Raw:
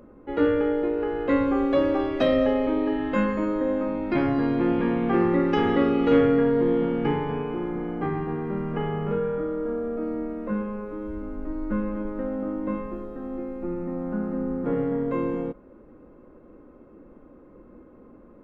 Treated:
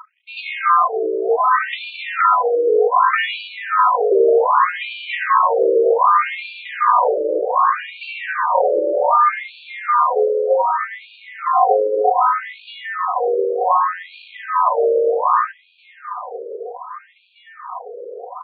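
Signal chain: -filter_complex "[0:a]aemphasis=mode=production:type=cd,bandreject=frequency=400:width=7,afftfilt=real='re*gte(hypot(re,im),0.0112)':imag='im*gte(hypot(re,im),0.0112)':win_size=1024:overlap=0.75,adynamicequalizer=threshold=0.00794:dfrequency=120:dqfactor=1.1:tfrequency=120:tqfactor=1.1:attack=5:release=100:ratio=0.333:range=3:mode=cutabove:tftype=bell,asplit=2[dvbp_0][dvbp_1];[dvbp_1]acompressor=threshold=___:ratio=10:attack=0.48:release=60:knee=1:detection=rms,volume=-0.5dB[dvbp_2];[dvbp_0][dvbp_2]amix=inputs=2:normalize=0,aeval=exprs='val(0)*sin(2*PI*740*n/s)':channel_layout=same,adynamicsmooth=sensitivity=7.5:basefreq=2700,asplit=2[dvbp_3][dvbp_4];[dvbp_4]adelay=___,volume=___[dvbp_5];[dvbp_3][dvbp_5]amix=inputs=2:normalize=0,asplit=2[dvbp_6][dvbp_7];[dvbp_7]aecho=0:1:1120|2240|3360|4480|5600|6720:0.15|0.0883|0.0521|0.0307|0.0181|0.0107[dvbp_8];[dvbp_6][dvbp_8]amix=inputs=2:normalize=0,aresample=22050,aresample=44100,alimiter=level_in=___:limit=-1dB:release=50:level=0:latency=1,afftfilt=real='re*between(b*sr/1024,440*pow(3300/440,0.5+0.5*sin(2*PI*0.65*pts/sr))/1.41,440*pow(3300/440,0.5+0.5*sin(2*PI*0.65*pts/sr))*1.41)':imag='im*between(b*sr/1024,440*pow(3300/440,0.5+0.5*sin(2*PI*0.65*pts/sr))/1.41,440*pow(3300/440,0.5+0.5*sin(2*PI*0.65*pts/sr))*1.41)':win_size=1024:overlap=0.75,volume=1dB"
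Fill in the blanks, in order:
-37dB, 33, -11.5dB, 19dB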